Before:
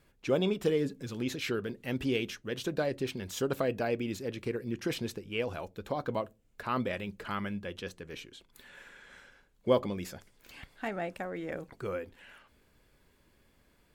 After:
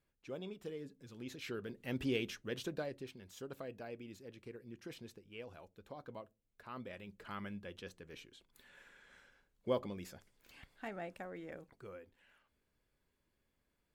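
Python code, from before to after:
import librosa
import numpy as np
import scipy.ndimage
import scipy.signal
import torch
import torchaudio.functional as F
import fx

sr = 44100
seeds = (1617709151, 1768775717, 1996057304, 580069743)

y = fx.gain(x, sr, db=fx.line((0.92, -17.0), (1.98, -5.0), (2.54, -5.0), (3.16, -16.0), (6.74, -16.0), (7.44, -9.0), (11.33, -9.0), (11.94, -15.5)))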